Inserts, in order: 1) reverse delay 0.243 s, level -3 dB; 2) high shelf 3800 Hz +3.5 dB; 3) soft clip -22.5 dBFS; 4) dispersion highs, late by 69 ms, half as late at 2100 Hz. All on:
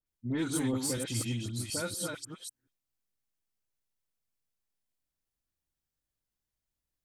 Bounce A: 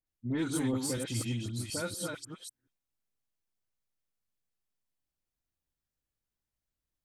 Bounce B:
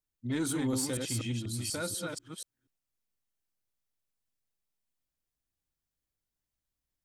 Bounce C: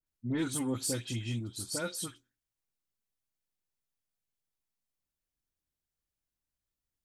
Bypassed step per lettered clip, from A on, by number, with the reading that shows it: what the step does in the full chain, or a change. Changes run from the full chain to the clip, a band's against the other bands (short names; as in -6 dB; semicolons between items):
2, 8 kHz band -2.5 dB; 4, crest factor change -4.5 dB; 1, momentary loudness spread change -7 LU